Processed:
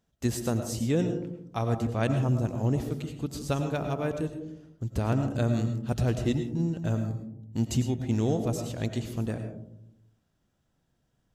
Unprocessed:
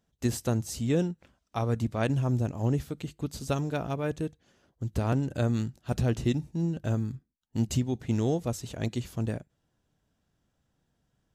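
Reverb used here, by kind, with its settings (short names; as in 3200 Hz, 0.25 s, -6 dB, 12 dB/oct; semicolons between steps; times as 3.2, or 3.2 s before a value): digital reverb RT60 0.73 s, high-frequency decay 0.25×, pre-delay 65 ms, DRR 7 dB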